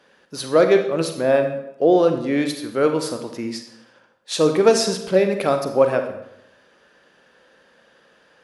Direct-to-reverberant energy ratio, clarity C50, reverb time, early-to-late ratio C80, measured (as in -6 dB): 6.0 dB, 8.0 dB, 0.85 s, 11.0 dB